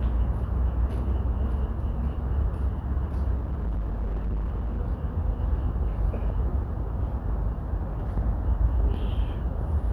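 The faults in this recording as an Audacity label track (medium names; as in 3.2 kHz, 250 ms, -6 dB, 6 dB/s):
3.350000	4.790000	clipped -25 dBFS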